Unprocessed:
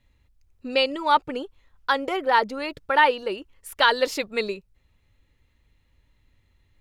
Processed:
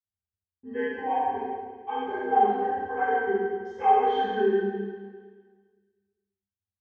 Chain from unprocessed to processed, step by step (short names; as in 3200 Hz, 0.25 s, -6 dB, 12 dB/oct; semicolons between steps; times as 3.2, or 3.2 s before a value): inharmonic rescaling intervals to 85%; gate -51 dBFS, range -34 dB; octave resonator G, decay 0.19 s; Schroeder reverb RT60 1.6 s, combs from 27 ms, DRR -6.5 dB; gain +8 dB